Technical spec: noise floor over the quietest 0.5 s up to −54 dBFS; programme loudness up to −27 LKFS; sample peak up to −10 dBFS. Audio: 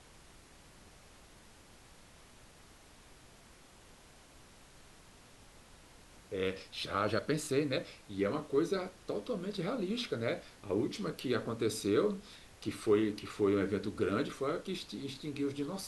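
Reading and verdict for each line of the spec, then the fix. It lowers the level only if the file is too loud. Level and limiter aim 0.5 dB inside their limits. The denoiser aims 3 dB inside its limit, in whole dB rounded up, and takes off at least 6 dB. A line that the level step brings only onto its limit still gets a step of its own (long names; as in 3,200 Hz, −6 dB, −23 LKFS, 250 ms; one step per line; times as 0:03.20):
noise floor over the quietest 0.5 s −58 dBFS: in spec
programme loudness −35.5 LKFS: in spec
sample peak −18.5 dBFS: in spec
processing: no processing needed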